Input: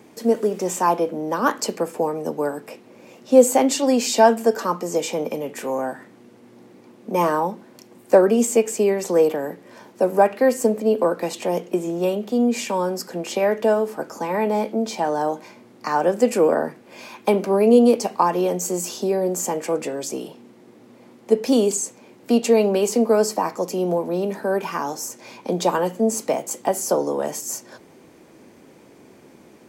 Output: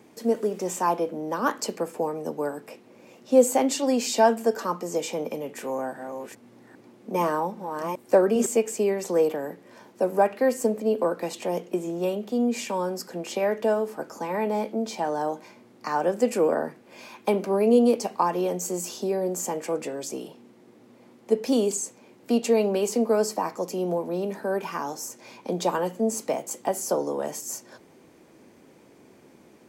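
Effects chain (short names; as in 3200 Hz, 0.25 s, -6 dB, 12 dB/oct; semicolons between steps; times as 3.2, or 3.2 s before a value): 5.55–8.46 reverse delay 0.401 s, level -6 dB; gain -5 dB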